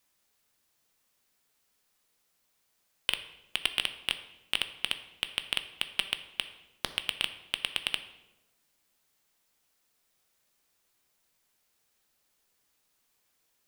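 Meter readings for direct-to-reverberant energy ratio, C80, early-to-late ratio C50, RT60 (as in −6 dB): 9.0 dB, 14.0 dB, 12.0 dB, 1.0 s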